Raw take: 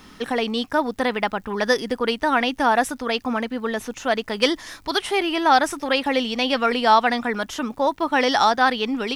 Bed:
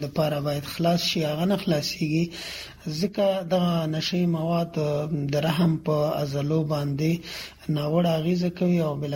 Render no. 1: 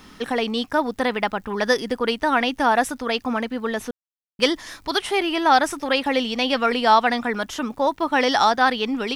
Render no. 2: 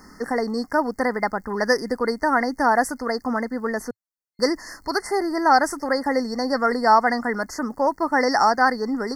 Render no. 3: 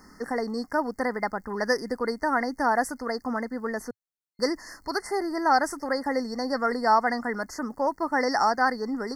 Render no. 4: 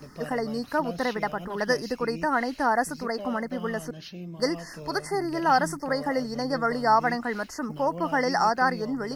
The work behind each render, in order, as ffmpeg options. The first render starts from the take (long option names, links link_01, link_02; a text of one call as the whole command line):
ffmpeg -i in.wav -filter_complex "[0:a]asplit=3[link_01][link_02][link_03];[link_01]atrim=end=3.91,asetpts=PTS-STARTPTS,afade=type=out:start_time=3.906:duration=0.004:curve=hsin[link_04];[link_02]atrim=start=3.91:end=4.39,asetpts=PTS-STARTPTS,volume=0[link_05];[link_03]atrim=start=4.39,asetpts=PTS-STARTPTS,afade=type=in:duration=0.004:curve=hsin[link_06];[link_04][link_05][link_06]concat=n=3:v=0:a=1" out.wav
ffmpeg -i in.wav -af "afftfilt=real='re*(1-between(b*sr/4096,2100,4300))':imag='im*(1-between(b*sr/4096,2100,4300))':win_size=4096:overlap=0.75,equalizer=frequency=110:width=5.2:gain=-11.5" out.wav
ffmpeg -i in.wav -af "volume=-5dB" out.wav
ffmpeg -i in.wav -i bed.wav -filter_complex "[1:a]volume=-15.5dB[link_01];[0:a][link_01]amix=inputs=2:normalize=0" out.wav